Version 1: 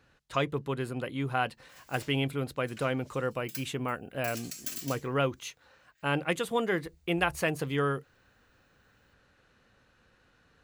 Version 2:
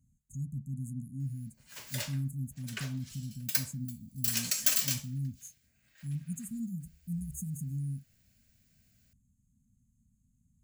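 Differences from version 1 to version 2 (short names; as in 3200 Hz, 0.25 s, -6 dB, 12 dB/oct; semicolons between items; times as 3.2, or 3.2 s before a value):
speech: add brick-wall FIR band-stop 260–6300 Hz; background +11.0 dB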